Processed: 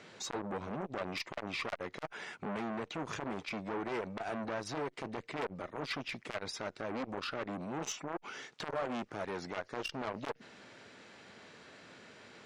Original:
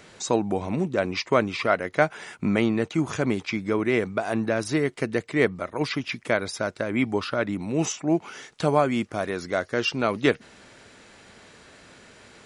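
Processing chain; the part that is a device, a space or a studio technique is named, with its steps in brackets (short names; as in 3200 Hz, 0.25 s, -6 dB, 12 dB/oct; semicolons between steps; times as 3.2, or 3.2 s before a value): valve radio (BPF 120–5600 Hz; tube stage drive 23 dB, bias 0.2; core saturation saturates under 880 Hz); gain -4 dB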